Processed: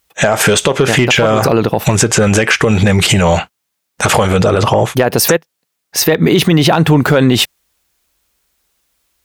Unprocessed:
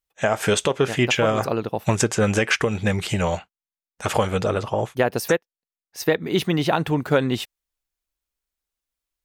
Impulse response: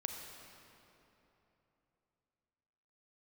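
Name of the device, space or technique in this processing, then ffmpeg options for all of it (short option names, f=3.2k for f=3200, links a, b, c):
mastering chain: -af "highpass=56,equalizer=f=160:t=o:w=0.25:g=2.5,acompressor=threshold=-22dB:ratio=2.5,asoftclip=type=tanh:threshold=-10dB,asoftclip=type=hard:threshold=-14.5dB,alimiter=level_in=24dB:limit=-1dB:release=50:level=0:latency=1,volume=-1dB"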